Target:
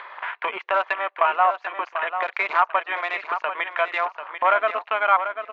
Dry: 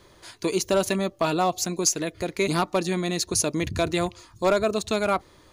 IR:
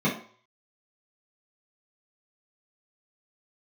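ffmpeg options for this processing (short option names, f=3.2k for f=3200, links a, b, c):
-filter_complex "[0:a]highpass=f=870:w=0.5412,highpass=f=870:w=1.3066,asplit=2[a][b];[b]acompressor=threshold=-38dB:ratio=4,volume=3dB[c];[a][c]amix=inputs=2:normalize=0,lowpass=f=2.5k:w=0.5412,lowpass=f=2.5k:w=1.3066,afwtdn=0.00891,acompressor=mode=upward:threshold=-28dB:ratio=2.5,aemphasis=mode=reproduction:type=75fm,asplit=2[d][e];[e]aecho=0:1:741|1482:0.355|0.0568[f];[d][f]amix=inputs=2:normalize=0,volume=7.5dB"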